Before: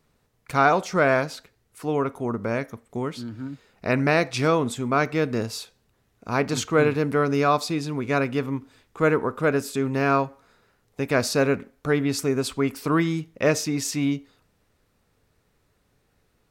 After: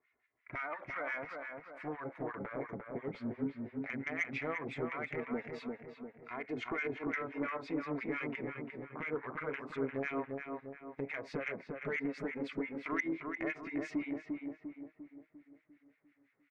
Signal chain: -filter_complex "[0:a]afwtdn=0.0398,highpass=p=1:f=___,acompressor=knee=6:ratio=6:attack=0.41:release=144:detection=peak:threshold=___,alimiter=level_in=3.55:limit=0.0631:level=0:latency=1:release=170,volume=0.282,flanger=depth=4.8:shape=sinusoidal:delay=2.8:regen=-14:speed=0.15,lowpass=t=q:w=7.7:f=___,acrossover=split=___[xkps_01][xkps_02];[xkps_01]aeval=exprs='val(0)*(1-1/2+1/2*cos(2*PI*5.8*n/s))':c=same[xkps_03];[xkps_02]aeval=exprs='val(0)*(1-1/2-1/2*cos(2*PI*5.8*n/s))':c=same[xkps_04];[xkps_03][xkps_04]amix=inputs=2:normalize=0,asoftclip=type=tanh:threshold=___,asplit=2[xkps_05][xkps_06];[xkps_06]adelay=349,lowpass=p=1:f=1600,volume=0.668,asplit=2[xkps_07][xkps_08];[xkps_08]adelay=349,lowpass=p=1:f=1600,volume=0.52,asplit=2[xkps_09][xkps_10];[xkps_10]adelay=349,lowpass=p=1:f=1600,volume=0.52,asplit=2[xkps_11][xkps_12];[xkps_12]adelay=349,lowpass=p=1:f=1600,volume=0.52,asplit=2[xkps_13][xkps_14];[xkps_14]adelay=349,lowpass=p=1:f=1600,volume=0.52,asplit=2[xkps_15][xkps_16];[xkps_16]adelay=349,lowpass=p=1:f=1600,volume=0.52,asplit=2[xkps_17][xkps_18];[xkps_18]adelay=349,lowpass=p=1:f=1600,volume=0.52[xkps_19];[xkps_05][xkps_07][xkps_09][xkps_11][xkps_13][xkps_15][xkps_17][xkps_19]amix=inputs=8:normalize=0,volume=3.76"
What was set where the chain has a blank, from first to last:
600, 0.0126, 2100, 1200, 0.0211